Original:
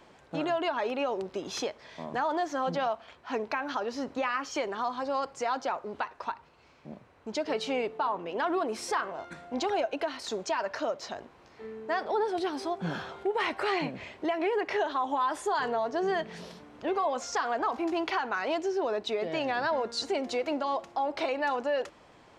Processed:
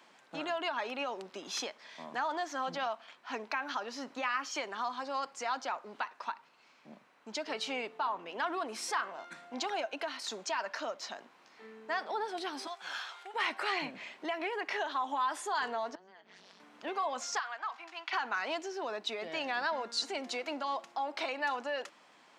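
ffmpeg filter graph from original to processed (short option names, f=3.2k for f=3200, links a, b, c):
-filter_complex "[0:a]asettb=1/sr,asplit=3[a][b][c];[a]atrim=end=12.674[d];[b]atrim=start=12.67:end=13.34,asetpts=PTS-STARTPTS,afade=t=in:d=0.004:c=qsin,afade=t=out:st=0.666:d=0.004:c=qsin,highpass=890,equalizer=f=6.7k:w=0.35:g=5[e];[c]atrim=start=13.336[f];[d][e]acrossfade=d=0.004:c1=hsin:c2=qsin[g];[g][f]acrossfade=d=0.004:c1=qsin:c2=hsin,asettb=1/sr,asplit=3[h][i][j];[h]atrim=end=15.954[k];[i]atrim=start=15.95:end=16.6,asetpts=PTS-STARTPTS,afade=t=in:d=0.004:c=qsin,afade=t=out:st=0.646:d=0.004:c=qsin,tremolo=f=190:d=0.974,acompressor=threshold=-46dB:ratio=16:attack=3.2:release=140:knee=1:detection=peak,highpass=150,lowpass=6.3k[l];[j]atrim=start=16.596[m];[k][l]acrossfade=d=0.004:c1=hsin:c2=qsin[n];[n][m]acrossfade=d=0.004:c1=qsin:c2=hsin,asettb=1/sr,asplit=3[o][p][q];[o]atrim=end=17.394[r];[p]atrim=start=17.39:end=18.13,asetpts=PTS-STARTPTS,afade=t=in:d=0.004:c=qsin,afade=t=out:st=0.736:d=0.004:c=qsin,highpass=1.3k,aemphasis=mode=reproduction:type=bsi[s];[q]atrim=start=18.126[t];[r][s]acrossfade=d=0.004:c1=hsin:c2=qsin[u];[u][t]acrossfade=d=0.004:c1=qsin:c2=hsin,highpass=f=220:w=0.5412,highpass=f=220:w=1.3066,equalizer=f=410:t=o:w=1.8:g=-11"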